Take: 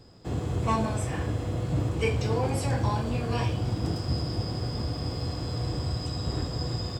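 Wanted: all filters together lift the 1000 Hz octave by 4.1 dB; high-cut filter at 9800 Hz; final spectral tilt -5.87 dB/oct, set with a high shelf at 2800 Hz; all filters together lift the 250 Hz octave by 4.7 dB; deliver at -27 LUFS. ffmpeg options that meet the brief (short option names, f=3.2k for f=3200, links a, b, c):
-af "lowpass=9.8k,equalizer=f=250:t=o:g=6,equalizer=f=1k:t=o:g=4,highshelf=f=2.8k:g=4.5"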